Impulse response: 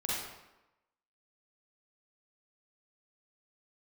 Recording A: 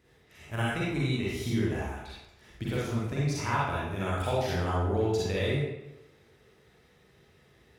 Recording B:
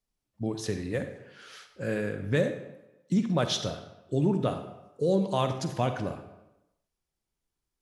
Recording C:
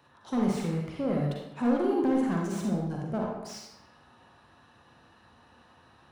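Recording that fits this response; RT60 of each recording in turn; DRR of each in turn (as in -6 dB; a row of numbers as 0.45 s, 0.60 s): A; 1.0 s, 0.95 s, 1.0 s; -7.0 dB, 7.5 dB, -1.5 dB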